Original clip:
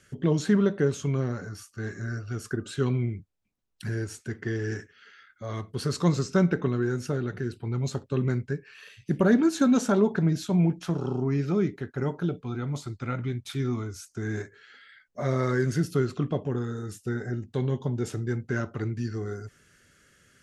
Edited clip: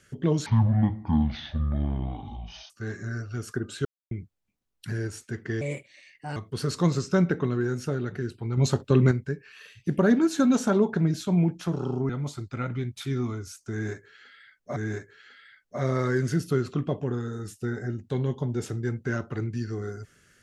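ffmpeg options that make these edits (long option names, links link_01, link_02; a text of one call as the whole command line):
ffmpeg -i in.wav -filter_complex "[0:a]asplit=11[link_01][link_02][link_03][link_04][link_05][link_06][link_07][link_08][link_09][link_10][link_11];[link_01]atrim=end=0.464[link_12];[link_02]atrim=start=0.46:end=1.67,asetpts=PTS-STARTPTS,asetrate=23814,aresample=44100[link_13];[link_03]atrim=start=1.666:end=2.82,asetpts=PTS-STARTPTS,afade=type=out:start_time=1.15:duration=0.004:curve=hsin[link_14];[link_04]atrim=start=2.82:end=3.08,asetpts=PTS-STARTPTS,volume=0[link_15];[link_05]atrim=start=3.08:end=4.584,asetpts=PTS-STARTPTS,afade=type=in:duration=0.004:curve=hsin[link_16];[link_06]atrim=start=4.58:end=5.58,asetpts=PTS-STARTPTS,asetrate=58653,aresample=44100[link_17];[link_07]atrim=start=5.576:end=7.792[link_18];[link_08]atrim=start=7.788:end=8.332,asetpts=PTS-STARTPTS,volume=7dB[link_19];[link_09]atrim=start=8.328:end=11.312[link_20];[link_10]atrim=start=12.578:end=15.252[link_21];[link_11]atrim=start=14.198[link_22];[link_12][link_13]acrossfade=duration=0.004:curve1=hsin:curve2=hsin[link_23];[link_14][link_15][link_16]concat=n=3:v=0:a=1[link_24];[link_23][link_24]acrossfade=duration=0.004:curve1=hsin:curve2=hsin[link_25];[link_25][link_17]acrossfade=duration=0.004:curve1=hsin:curve2=hsin[link_26];[link_26][link_18]acrossfade=duration=0.004:curve1=hsin:curve2=hsin[link_27];[link_27][link_19]acrossfade=duration=0.004:curve1=hsin:curve2=hsin[link_28];[link_28][link_20]acrossfade=duration=0.004:curve1=hsin:curve2=hsin[link_29];[link_29][link_21]acrossfade=duration=0.004:curve1=hsin:curve2=hsin[link_30];[link_30][link_22]acrossfade=duration=0.004:curve1=hsin:curve2=hsin" out.wav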